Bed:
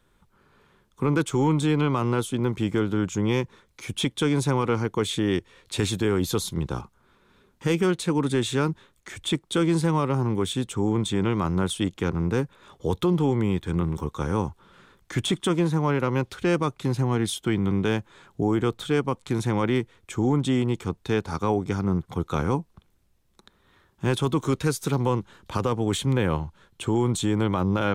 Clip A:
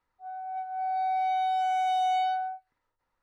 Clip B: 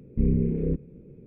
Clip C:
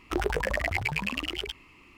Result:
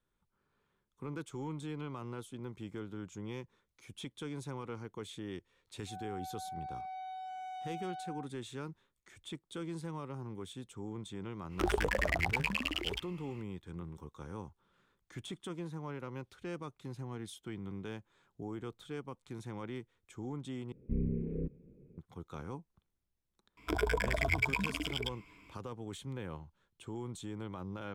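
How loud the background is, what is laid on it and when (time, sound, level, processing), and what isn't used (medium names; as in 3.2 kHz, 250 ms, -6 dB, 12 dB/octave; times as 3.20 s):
bed -19 dB
5.67 s: add A -8 dB + compression, threshold -34 dBFS
11.48 s: add C -3.5 dB, fades 0.05 s
20.72 s: replace with B -11 dB
23.57 s: add C -5.5 dB + rippled EQ curve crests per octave 1.7, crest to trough 12 dB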